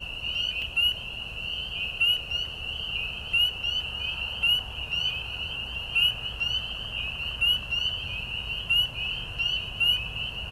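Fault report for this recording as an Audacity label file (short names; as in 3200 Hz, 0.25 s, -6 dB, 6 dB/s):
0.620000	0.620000	gap 2 ms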